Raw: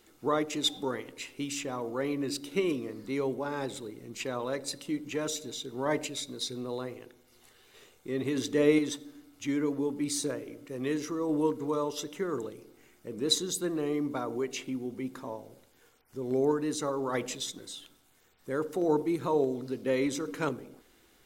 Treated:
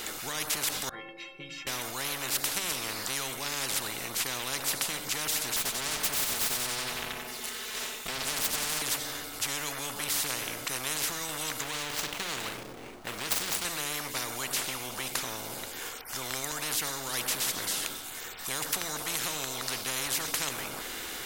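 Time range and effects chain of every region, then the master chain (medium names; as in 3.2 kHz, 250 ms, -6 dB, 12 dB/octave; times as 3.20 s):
0.89–1.67 s: distance through air 380 m + inharmonic resonator 160 Hz, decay 0.59 s, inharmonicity 0.03
5.56–8.82 s: comb filter that takes the minimum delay 4.6 ms + valve stage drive 36 dB, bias 0.5 + feedback delay 92 ms, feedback 53%, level -8.5 dB
11.62–13.65 s: median filter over 25 samples + doubling 41 ms -12 dB + compression 3:1, threshold -32 dBFS
whole clip: bass shelf 480 Hz -11.5 dB; loudness maximiser +22 dB; spectrum-flattening compressor 10:1; trim -9 dB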